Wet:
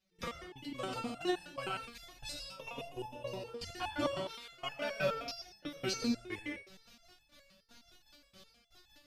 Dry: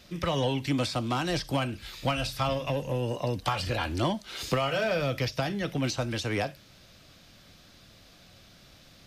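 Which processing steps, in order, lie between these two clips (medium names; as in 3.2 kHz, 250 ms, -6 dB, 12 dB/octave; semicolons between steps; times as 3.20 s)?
trance gate "..x...x.x.x" 162 bpm -24 dB; reverberation, pre-delay 79 ms, DRR 3.5 dB; resonator arpeggio 9.6 Hz 190–860 Hz; trim +10 dB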